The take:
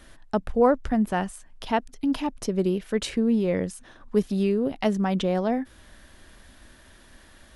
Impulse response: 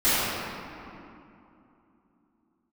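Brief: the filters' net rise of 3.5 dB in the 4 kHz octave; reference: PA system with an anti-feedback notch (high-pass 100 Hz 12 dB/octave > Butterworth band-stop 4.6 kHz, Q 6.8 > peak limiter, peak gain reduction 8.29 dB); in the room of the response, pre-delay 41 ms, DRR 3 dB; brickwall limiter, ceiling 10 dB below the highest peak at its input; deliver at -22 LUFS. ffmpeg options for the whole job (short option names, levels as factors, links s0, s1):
-filter_complex "[0:a]equalizer=f=4000:t=o:g=5,alimiter=limit=0.126:level=0:latency=1,asplit=2[s0][s1];[1:a]atrim=start_sample=2205,adelay=41[s2];[s1][s2]afir=irnorm=-1:irlink=0,volume=0.0794[s3];[s0][s3]amix=inputs=2:normalize=0,highpass=100,asuperstop=centerf=4600:order=8:qfactor=6.8,volume=2.51,alimiter=limit=0.224:level=0:latency=1"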